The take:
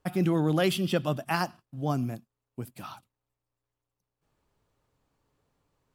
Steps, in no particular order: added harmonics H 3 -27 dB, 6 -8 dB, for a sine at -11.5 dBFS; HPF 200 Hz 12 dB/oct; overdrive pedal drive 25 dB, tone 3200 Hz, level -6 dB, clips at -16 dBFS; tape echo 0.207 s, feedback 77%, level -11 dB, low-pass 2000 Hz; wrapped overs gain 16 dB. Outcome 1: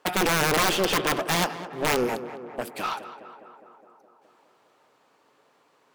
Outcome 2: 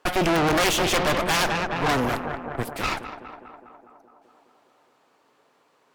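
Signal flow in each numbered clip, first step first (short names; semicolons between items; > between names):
added harmonics > HPF > overdrive pedal > wrapped overs > tape echo; tape echo > wrapped overs > HPF > overdrive pedal > added harmonics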